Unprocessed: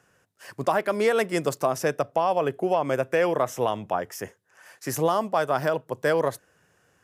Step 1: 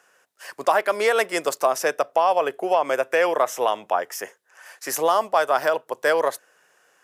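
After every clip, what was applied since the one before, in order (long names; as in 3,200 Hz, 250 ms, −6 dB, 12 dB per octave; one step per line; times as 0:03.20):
high-pass filter 530 Hz 12 dB per octave
level +5.5 dB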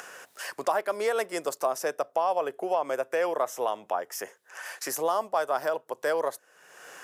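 dynamic equaliser 2,500 Hz, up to −6 dB, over −38 dBFS, Q 0.8
upward compression, threshold −22 dBFS
level −6 dB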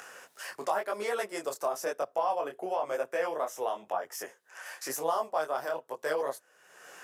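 micro pitch shift up and down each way 34 cents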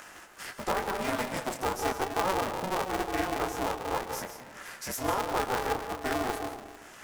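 comb and all-pass reverb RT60 1.2 s, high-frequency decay 0.35×, pre-delay 110 ms, DRR 5.5 dB
ring modulator with a square carrier 190 Hz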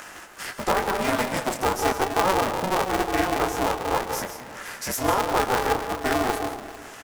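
single-tap delay 581 ms −21.5 dB
level +7 dB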